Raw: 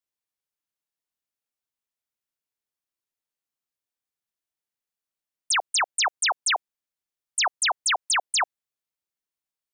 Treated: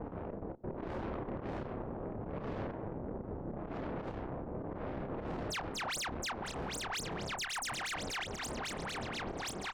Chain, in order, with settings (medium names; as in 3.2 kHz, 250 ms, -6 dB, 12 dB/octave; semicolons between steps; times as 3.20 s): backward echo that repeats 637 ms, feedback 53%, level 0 dB; wind noise 520 Hz -28 dBFS; level-controlled noise filter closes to 520 Hz, open at -17.5 dBFS; peaking EQ 7.9 kHz -2.5 dB 0.96 oct; level rider gain up to 16.5 dB; slow attack 215 ms; level held to a coarse grid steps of 24 dB; peak limiter -42 dBFS, peak gain reduction 29.5 dB; doubling 30 ms -6.5 dB; Chebyshev shaper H 4 -16 dB, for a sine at -38.5 dBFS; trim +8 dB